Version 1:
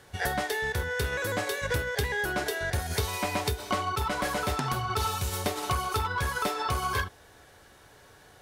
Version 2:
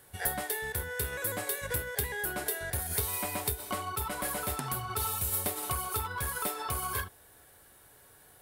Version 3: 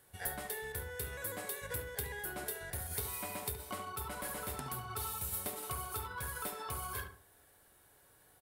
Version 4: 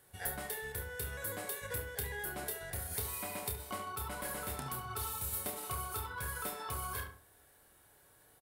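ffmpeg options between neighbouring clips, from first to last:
-af "aexciter=amount=6:drive=4.4:freq=8.4k,volume=-6.5dB"
-filter_complex "[0:a]asplit=2[a][b];[b]adelay=71,lowpass=f=2k:p=1,volume=-6.5dB,asplit=2[c][d];[d]adelay=71,lowpass=f=2k:p=1,volume=0.34,asplit=2[e][f];[f]adelay=71,lowpass=f=2k:p=1,volume=0.34,asplit=2[g][h];[h]adelay=71,lowpass=f=2k:p=1,volume=0.34[i];[a][c][e][g][i]amix=inputs=5:normalize=0,volume=-7.5dB"
-filter_complex "[0:a]asplit=2[a][b];[b]adelay=29,volume=-8dB[c];[a][c]amix=inputs=2:normalize=0"

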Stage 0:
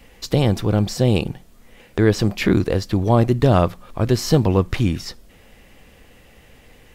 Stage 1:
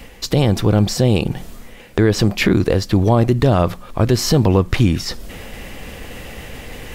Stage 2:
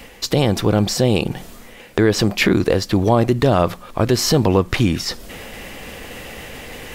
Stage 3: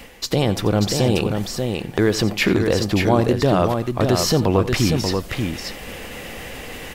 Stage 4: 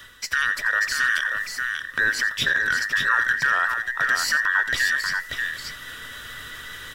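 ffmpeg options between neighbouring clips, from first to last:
-af "alimiter=limit=-9.5dB:level=0:latency=1:release=84,areverse,acompressor=mode=upward:threshold=-27dB:ratio=2.5,areverse,volume=6dB"
-af "lowshelf=f=160:g=-8.5,volume=1.5dB"
-af "areverse,acompressor=mode=upward:threshold=-27dB:ratio=2.5,areverse,aecho=1:1:87|586:0.178|0.562,volume=-2.5dB"
-af "afftfilt=real='real(if(between(b,1,1012),(2*floor((b-1)/92)+1)*92-b,b),0)':imag='imag(if(between(b,1,1012),(2*floor((b-1)/92)+1)*92-b,b),0)*if(between(b,1,1012),-1,1)':win_size=2048:overlap=0.75,equalizer=f=200:t=o:w=0.33:g=-9,equalizer=f=315:t=o:w=0.33:g=-7,equalizer=f=800:t=o:w=0.33:g=-11,volume=-4dB"

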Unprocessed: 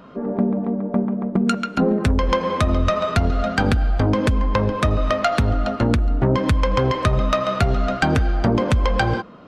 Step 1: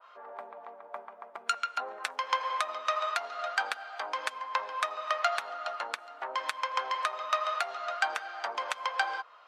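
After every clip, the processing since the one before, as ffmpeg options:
-af "highpass=f=810:w=0.5412,highpass=f=810:w=1.3066,adynamicequalizer=threshold=0.0224:dfrequency=1600:dqfactor=0.7:tfrequency=1600:tqfactor=0.7:attack=5:release=100:ratio=0.375:range=1.5:mode=cutabove:tftype=highshelf,volume=-5dB"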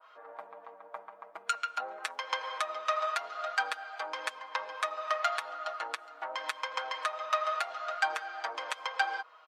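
-af "aecho=1:1:6.3:0.79,volume=-3.5dB"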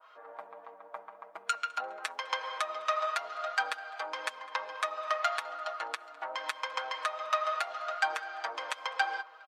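-filter_complex "[0:a]asplit=2[a][b];[b]adelay=206,lowpass=f=3.9k:p=1,volume=-21dB,asplit=2[c][d];[d]adelay=206,lowpass=f=3.9k:p=1,volume=0.54,asplit=2[e][f];[f]adelay=206,lowpass=f=3.9k:p=1,volume=0.54,asplit=2[g][h];[h]adelay=206,lowpass=f=3.9k:p=1,volume=0.54[i];[a][c][e][g][i]amix=inputs=5:normalize=0"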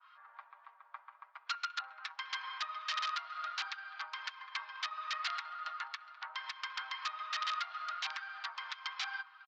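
-af "aresample=16000,aeval=exprs='(mod(17.8*val(0)+1,2)-1)/17.8':c=same,aresample=44100,asuperpass=centerf=2300:order=8:qfactor=0.58,volume=-2.5dB"

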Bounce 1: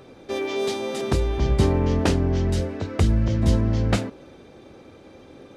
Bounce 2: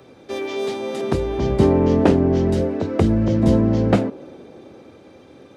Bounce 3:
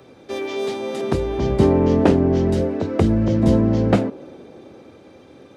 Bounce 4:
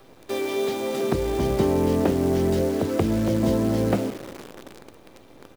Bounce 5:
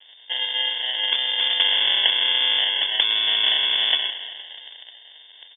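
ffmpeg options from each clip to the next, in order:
-filter_complex "[0:a]highpass=74,acrossover=split=170|840|3200[a][b][c][d];[b]dynaudnorm=f=200:g=13:m=11.5dB[e];[d]alimiter=level_in=7.5dB:limit=-24dB:level=0:latency=1:release=321,volume=-7.5dB[f];[a][e][c][f]amix=inputs=4:normalize=0"
-af anull
-filter_complex "[0:a]acrossover=split=240|720[a][b][c];[a]acompressor=threshold=-26dB:ratio=4[d];[b]acompressor=threshold=-22dB:ratio=4[e];[c]acompressor=threshold=-32dB:ratio=4[f];[d][e][f]amix=inputs=3:normalize=0,asplit=2[g][h];[h]adelay=171,lowpass=f=2k:p=1,volume=-18.5dB,asplit=2[i][j];[j]adelay=171,lowpass=f=2k:p=1,volume=0.37,asplit=2[k][l];[l]adelay=171,lowpass=f=2k:p=1,volume=0.37[m];[g][i][k][m]amix=inputs=4:normalize=0,acrusher=bits=7:dc=4:mix=0:aa=0.000001"
-filter_complex "[0:a]asplit=5[a][b][c][d][e];[b]adelay=293,afreqshift=61,volume=-17dB[f];[c]adelay=586,afreqshift=122,volume=-23.2dB[g];[d]adelay=879,afreqshift=183,volume=-29.4dB[h];[e]adelay=1172,afreqshift=244,volume=-35.6dB[i];[a][f][g][h][i]amix=inputs=5:normalize=0,acrusher=samples=38:mix=1:aa=0.000001,lowpass=f=3.1k:t=q:w=0.5098,lowpass=f=3.1k:t=q:w=0.6013,lowpass=f=3.1k:t=q:w=0.9,lowpass=f=3.1k:t=q:w=2.563,afreqshift=-3600,volume=1dB"

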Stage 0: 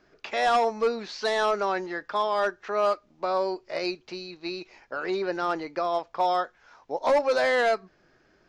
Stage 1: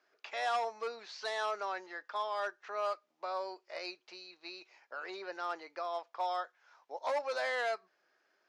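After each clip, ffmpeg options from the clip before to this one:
-af "highpass=610,volume=-9dB"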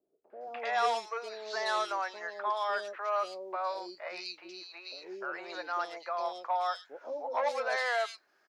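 -filter_complex "[0:a]acrossover=split=490|2700[a][b][c];[b]adelay=300[d];[c]adelay=410[e];[a][d][e]amix=inputs=3:normalize=0,volume=5.5dB"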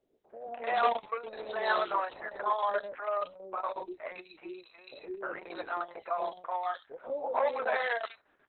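-af "aemphasis=mode=reproduction:type=bsi,volume=2dB" -ar 48000 -c:a libopus -b:a 6k

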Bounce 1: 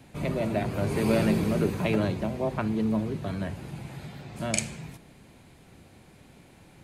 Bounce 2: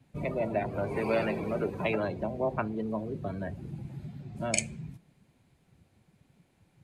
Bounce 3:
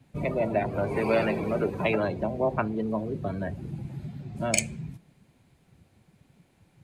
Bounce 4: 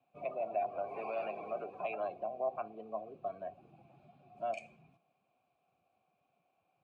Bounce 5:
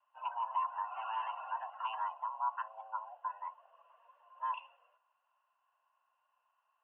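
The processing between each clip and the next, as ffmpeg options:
-filter_complex "[0:a]afftdn=nr=16:nf=-36,acrossover=split=430[a][b];[a]acompressor=threshold=-35dB:ratio=12[c];[c][b]amix=inputs=2:normalize=0,adynamicequalizer=threshold=0.00282:dfrequency=4800:dqfactor=0.7:tfrequency=4800:tqfactor=0.7:attack=5:release=100:ratio=0.375:range=3:mode=cutabove:tftype=highshelf,volume=1dB"
-af "asoftclip=type=hard:threshold=-11.5dB,volume=4dB"
-filter_complex "[0:a]alimiter=limit=-18dB:level=0:latency=1:release=67,asplit=3[a][b][c];[a]bandpass=f=730:t=q:w=8,volume=0dB[d];[b]bandpass=f=1.09k:t=q:w=8,volume=-6dB[e];[c]bandpass=f=2.44k:t=q:w=8,volume=-9dB[f];[d][e][f]amix=inputs=3:normalize=0"
-af "highpass=f=290:t=q:w=0.5412,highpass=f=290:t=q:w=1.307,lowpass=f=2.5k:t=q:w=0.5176,lowpass=f=2.5k:t=q:w=0.7071,lowpass=f=2.5k:t=q:w=1.932,afreqshift=330"

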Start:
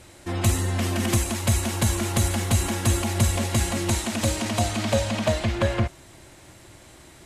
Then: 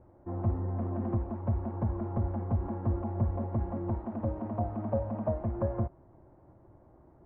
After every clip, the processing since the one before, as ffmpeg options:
-af "lowpass=f=1k:w=0.5412,lowpass=f=1k:w=1.3066,volume=-7.5dB"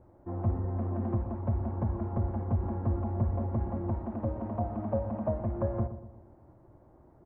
-filter_complex "[0:a]asplit=2[a][b];[b]adelay=120,lowpass=f=1.2k:p=1,volume=-11.5dB,asplit=2[c][d];[d]adelay=120,lowpass=f=1.2k:p=1,volume=0.51,asplit=2[e][f];[f]adelay=120,lowpass=f=1.2k:p=1,volume=0.51,asplit=2[g][h];[h]adelay=120,lowpass=f=1.2k:p=1,volume=0.51,asplit=2[i][j];[j]adelay=120,lowpass=f=1.2k:p=1,volume=0.51[k];[a][c][e][g][i][k]amix=inputs=6:normalize=0"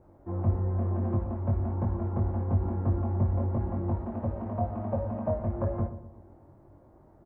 -filter_complex "[0:a]asplit=2[a][b];[b]adelay=21,volume=-3dB[c];[a][c]amix=inputs=2:normalize=0"

